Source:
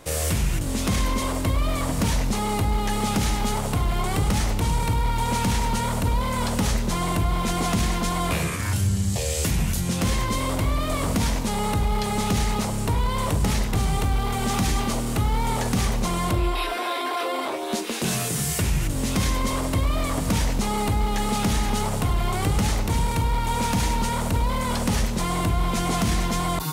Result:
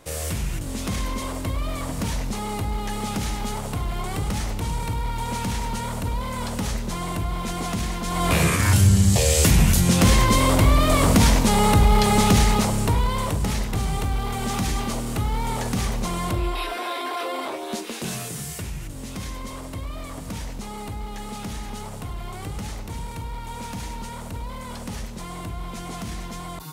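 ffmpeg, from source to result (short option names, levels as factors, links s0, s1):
-af "volume=2.24,afade=t=in:st=8.05:d=0.44:silence=0.281838,afade=t=out:st=12.15:d=1.22:silence=0.354813,afade=t=out:st=17.46:d=1.29:silence=0.398107"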